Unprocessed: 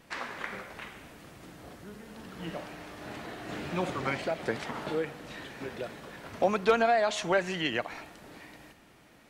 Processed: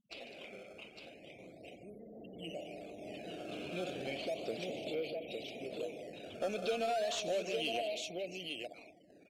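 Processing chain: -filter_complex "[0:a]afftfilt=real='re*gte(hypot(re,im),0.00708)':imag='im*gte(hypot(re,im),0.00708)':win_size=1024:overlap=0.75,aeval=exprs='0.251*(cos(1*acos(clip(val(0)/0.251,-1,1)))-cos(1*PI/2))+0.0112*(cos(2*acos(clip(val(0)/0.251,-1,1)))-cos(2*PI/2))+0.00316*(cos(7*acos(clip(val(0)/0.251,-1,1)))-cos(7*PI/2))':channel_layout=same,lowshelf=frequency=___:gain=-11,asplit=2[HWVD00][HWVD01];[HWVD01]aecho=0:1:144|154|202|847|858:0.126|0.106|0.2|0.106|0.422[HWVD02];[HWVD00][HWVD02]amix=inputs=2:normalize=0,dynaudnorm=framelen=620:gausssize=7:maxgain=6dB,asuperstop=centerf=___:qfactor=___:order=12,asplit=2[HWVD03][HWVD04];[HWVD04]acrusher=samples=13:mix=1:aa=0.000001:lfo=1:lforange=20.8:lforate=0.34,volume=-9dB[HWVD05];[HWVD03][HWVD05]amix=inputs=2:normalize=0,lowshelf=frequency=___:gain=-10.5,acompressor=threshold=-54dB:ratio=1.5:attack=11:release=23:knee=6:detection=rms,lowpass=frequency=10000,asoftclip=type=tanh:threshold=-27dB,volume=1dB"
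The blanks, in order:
120, 1300, 0.77, 420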